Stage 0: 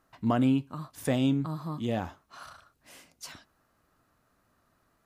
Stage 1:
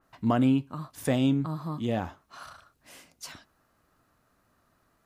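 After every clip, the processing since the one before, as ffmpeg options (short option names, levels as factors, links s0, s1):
-af "adynamicequalizer=threshold=0.00316:dfrequency=3200:dqfactor=0.7:tfrequency=3200:tqfactor=0.7:attack=5:release=100:ratio=0.375:range=2:mode=cutabove:tftype=highshelf,volume=1.19"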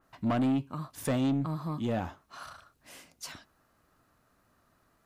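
-af "asoftclip=type=tanh:threshold=0.0708"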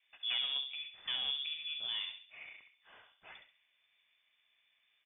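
-filter_complex "[0:a]equalizer=f=360:t=o:w=1.1:g=-11,asplit=2[s0][s1];[s1]adelay=67,lowpass=f=1900:p=1,volume=0.447,asplit=2[s2][s3];[s3]adelay=67,lowpass=f=1900:p=1,volume=0.44,asplit=2[s4][s5];[s5]adelay=67,lowpass=f=1900:p=1,volume=0.44,asplit=2[s6][s7];[s7]adelay=67,lowpass=f=1900:p=1,volume=0.44,asplit=2[s8][s9];[s9]adelay=67,lowpass=f=1900:p=1,volume=0.44[s10];[s0][s2][s4][s6][s8][s10]amix=inputs=6:normalize=0,lowpass=f=3100:t=q:w=0.5098,lowpass=f=3100:t=q:w=0.6013,lowpass=f=3100:t=q:w=0.9,lowpass=f=3100:t=q:w=2.563,afreqshift=-3600,volume=0.562"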